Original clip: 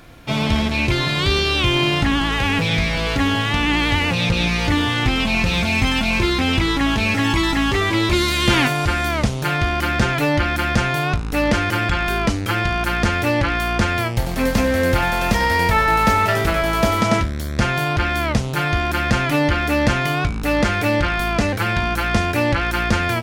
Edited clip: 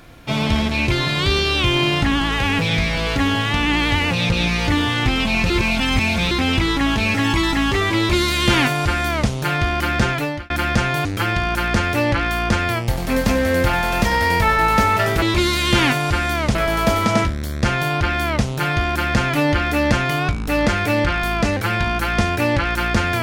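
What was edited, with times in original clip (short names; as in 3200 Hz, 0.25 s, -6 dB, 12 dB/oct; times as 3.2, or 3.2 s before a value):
5.5–6.31 reverse
7.97–9.3 copy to 16.51
10.09–10.5 fade out linear
11.05–12.34 cut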